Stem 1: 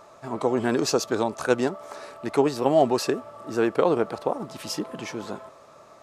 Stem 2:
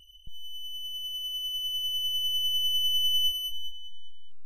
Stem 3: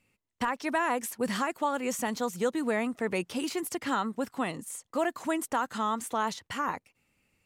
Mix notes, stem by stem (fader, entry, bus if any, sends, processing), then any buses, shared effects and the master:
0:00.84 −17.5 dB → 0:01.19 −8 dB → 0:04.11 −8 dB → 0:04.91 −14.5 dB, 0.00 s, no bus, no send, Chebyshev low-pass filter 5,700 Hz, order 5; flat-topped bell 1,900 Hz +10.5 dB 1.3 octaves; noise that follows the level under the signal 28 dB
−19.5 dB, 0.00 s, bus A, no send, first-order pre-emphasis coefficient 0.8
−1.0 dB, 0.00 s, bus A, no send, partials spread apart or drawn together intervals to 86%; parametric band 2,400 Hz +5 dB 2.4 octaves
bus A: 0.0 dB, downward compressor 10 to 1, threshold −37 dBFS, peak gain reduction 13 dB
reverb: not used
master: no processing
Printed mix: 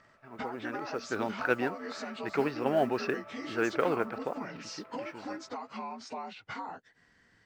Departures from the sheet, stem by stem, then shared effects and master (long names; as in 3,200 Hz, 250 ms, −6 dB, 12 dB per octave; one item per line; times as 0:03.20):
stem 2: muted
stem 3 −1.0 dB → +8.0 dB
master: extra high-shelf EQ 3,600 Hz −7 dB